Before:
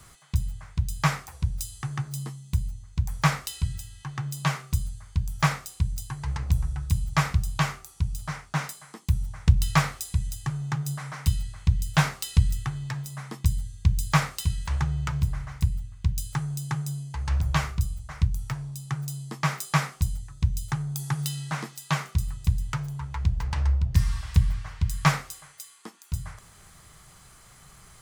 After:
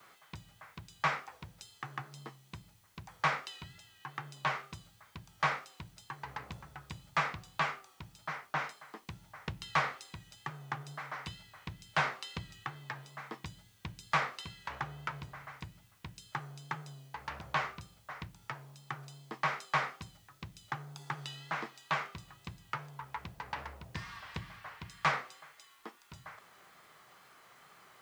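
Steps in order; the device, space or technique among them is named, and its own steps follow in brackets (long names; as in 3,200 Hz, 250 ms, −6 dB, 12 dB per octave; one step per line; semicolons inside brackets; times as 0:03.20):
tape answering machine (band-pass filter 360–3,000 Hz; soft clipping −19 dBFS, distortion −14 dB; tape wow and flutter; white noise bed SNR 29 dB)
level −1.5 dB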